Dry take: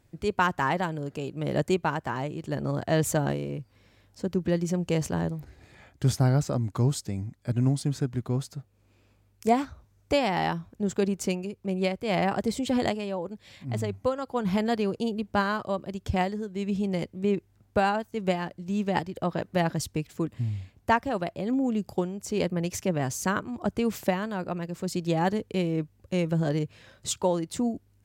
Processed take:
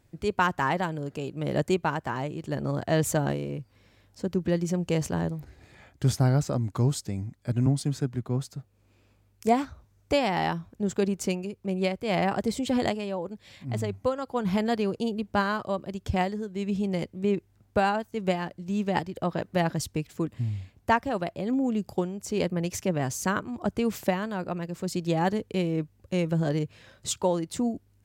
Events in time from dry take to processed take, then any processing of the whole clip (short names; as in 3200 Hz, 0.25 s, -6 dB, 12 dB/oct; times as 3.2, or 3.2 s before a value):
7.66–8.56 three-band expander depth 40%